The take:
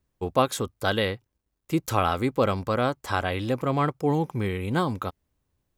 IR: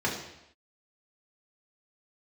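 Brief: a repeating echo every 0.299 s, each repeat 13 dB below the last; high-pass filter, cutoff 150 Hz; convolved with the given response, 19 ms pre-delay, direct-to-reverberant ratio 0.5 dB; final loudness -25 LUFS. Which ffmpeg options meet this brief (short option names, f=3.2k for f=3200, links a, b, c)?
-filter_complex "[0:a]highpass=150,aecho=1:1:299|598|897:0.224|0.0493|0.0108,asplit=2[a][b];[1:a]atrim=start_sample=2205,adelay=19[c];[b][c]afir=irnorm=-1:irlink=0,volume=-11dB[d];[a][d]amix=inputs=2:normalize=0,volume=-1.5dB"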